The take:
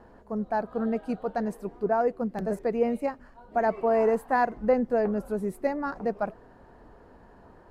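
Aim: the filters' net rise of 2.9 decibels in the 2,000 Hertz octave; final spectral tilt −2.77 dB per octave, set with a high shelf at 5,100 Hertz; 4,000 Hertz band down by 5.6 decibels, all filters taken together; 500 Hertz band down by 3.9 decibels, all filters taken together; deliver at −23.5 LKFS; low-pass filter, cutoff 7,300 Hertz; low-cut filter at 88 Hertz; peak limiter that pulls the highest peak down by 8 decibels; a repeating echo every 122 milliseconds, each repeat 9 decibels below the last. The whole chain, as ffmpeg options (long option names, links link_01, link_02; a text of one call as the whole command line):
ffmpeg -i in.wav -af "highpass=88,lowpass=7300,equalizer=frequency=500:width_type=o:gain=-5,equalizer=frequency=2000:width_type=o:gain=6,equalizer=frequency=4000:width_type=o:gain=-6,highshelf=frequency=5100:gain=-7.5,alimiter=limit=-22.5dB:level=0:latency=1,aecho=1:1:122|244|366|488:0.355|0.124|0.0435|0.0152,volume=9dB" out.wav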